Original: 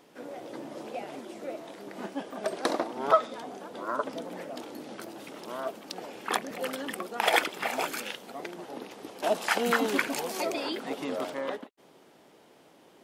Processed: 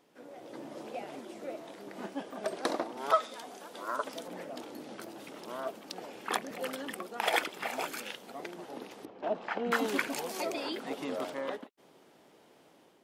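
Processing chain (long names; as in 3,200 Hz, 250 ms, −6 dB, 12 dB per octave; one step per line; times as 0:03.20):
0:02.97–0:04.28: spectral tilt +2.5 dB per octave
automatic gain control gain up to 6 dB
0:09.05–0:09.72: head-to-tape spacing loss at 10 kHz 37 dB
level −9 dB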